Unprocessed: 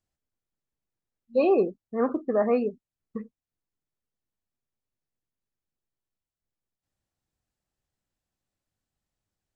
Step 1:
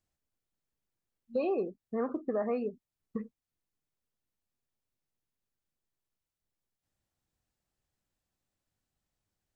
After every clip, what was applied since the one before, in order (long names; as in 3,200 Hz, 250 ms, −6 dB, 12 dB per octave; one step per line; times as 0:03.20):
downward compressor 3 to 1, threshold −31 dBFS, peak gain reduction 10.5 dB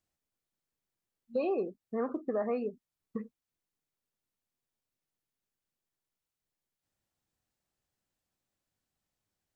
low-shelf EQ 95 Hz −7.5 dB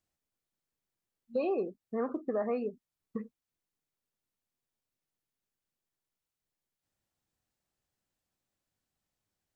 no processing that can be heard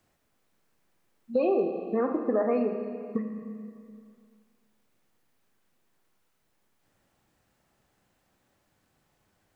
four-comb reverb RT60 1.7 s, combs from 29 ms, DRR 5.5 dB
multiband upward and downward compressor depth 40%
level +6 dB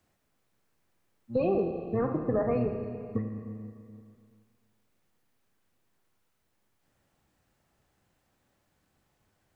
sub-octave generator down 1 octave, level −2 dB
level −2.5 dB